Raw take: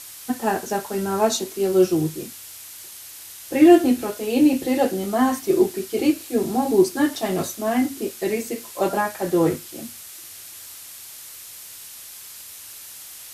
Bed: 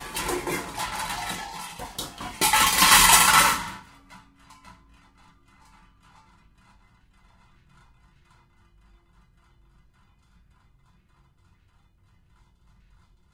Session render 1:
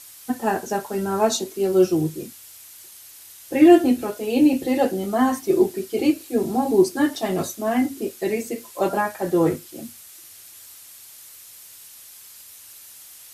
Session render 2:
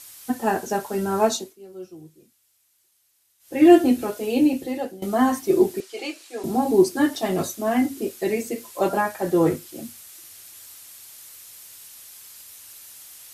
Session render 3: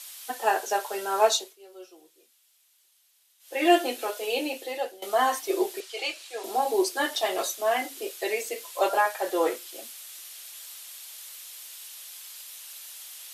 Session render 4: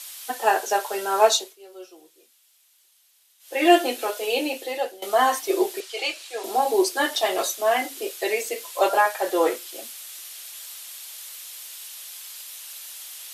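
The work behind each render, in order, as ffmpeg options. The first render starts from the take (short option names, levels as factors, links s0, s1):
-af "afftdn=nr=6:nf=-40"
-filter_complex "[0:a]asettb=1/sr,asplit=3[s0][s1][s2];[s0]atrim=end=5.804[s3];[s1]atrim=start=5.8:end=6.44,asetpts=PTS-STARTPTS,afade=t=in:d=0.004:c=qsin,afade=t=out:st=0.636:d=0.004:c=qsin,highpass=760,lowpass=7600[s4];[s2]atrim=start=6.436[s5];[s3][s4]acrossfade=d=0.004:c1=hsin:c2=qsin[s6];[s6][s5]acrossfade=d=0.004:c1=qsin:c2=hsin,asplit=4[s7][s8][s9][s10];[s7]atrim=end=1.56,asetpts=PTS-STARTPTS,afade=t=out:st=1.25:d=0.31:silence=0.0841395[s11];[s8]atrim=start=1.56:end=3.39,asetpts=PTS-STARTPTS,volume=0.0841[s12];[s9]atrim=start=3.39:end=5.02,asetpts=PTS-STARTPTS,afade=t=in:d=0.31:silence=0.0841395,afade=t=out:st=0.85:d=0.78:silence=0.125893[s13];[s10]atrim=start=5.02,asetpts=PTS-STARTPTS,afade=t=in:d=0.004:c=hsin:silence=0.125893[s14];[s11][s12][s13][s14]concat=n=4:v=0:a=1"
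-af "highpass=f=470:w=0.5412,highpass=f=470:w=1.3066,equalizer=f=3300:w=1.5:g=6"
-af "volume=1.58"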